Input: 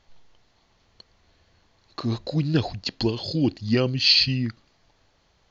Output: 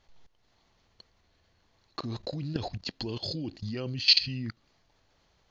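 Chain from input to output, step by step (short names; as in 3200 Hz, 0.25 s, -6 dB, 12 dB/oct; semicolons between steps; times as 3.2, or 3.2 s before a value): level quantiser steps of 17 dB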